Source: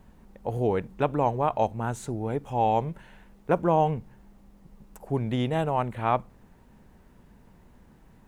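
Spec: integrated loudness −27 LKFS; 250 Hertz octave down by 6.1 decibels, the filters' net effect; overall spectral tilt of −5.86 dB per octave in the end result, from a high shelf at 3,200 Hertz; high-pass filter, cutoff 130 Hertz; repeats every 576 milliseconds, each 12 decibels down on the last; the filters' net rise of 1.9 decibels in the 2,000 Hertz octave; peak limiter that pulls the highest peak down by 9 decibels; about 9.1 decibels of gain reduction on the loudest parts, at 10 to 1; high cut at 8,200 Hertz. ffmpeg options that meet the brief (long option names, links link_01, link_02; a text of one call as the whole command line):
ffmpeg -i in.wav -af "highpass=130,lowpass=8200,equalizer=frequency=250:width_type=o:gain=-8,equalizer=frequency=2000:width_type=o:gain=5,highshelf=frequency=3200:gain=-6.5,acompressor=threshold=-28dB:ratio=10,alimiter=level_in=1dB:limit=-24dB:level=0:latency=1,volume=-1dB,aecho=1:1:576|1152|1728:0.251|0.0628|0.0157,volume=11dB" out.wav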